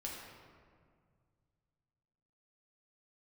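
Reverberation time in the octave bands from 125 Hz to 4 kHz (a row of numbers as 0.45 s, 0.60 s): 3.2 s, 2.4 s, 2.1 s, 1.9 s, 1.5 s, 1.1 s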